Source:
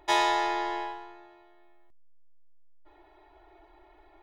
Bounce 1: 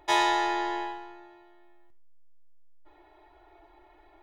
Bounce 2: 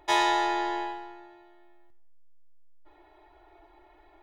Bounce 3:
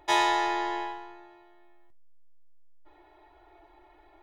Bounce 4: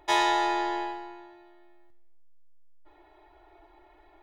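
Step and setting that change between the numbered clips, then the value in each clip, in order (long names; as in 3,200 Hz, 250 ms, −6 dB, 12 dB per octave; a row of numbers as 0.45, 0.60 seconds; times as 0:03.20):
reverb whose tail is shaped and stops, gate: 170, 290, 80, 430 milliseconds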